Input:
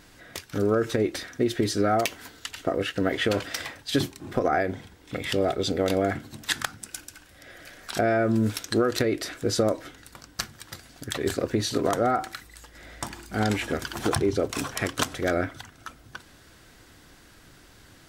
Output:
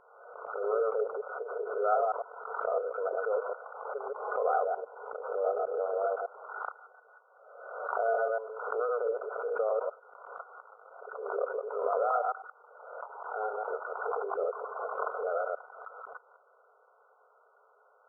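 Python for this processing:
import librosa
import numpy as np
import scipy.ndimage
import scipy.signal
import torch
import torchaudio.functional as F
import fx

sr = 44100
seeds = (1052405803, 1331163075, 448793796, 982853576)

y = fx.reverse_delay(x, sr, ms=101, wet_db=-0.5)
y = fx.brickwall_bandpass(y, sr, low_hz=410.0, high_hz=1500.0)
y = fx.pre_swell(y, sr, db_per_s=49.0)
y = y * 10.0 ** (-6.0 / 20.0)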